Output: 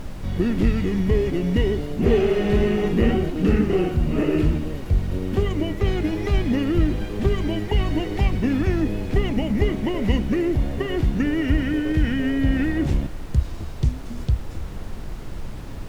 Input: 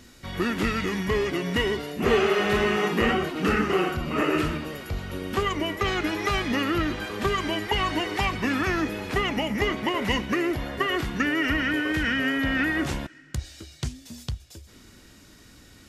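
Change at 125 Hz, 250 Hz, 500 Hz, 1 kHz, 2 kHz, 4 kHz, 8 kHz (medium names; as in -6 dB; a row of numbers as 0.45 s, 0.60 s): +10.0 dB, +5.5 dB, +3.0 dB, -6.5 dB, -7.0 dB, -6.0 dB, no reading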